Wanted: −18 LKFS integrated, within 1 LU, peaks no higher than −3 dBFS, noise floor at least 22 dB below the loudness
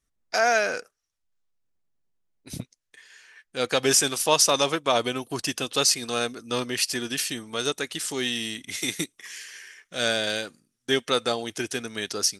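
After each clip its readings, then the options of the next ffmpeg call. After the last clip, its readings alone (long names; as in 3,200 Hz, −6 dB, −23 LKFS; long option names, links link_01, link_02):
integrated loudness −25.0 LKFS; sample peak −5.0 dBFS; target loudness −18.0 LKFS
→ -af "volume=7dB,alimiter=limit=-3dB:level=0:latency=1"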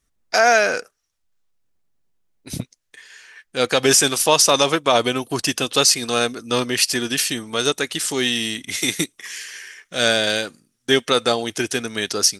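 integrated loudness −18.5 LKFS; sample peak −3.0 dBFS; background noise floor −72 dBFS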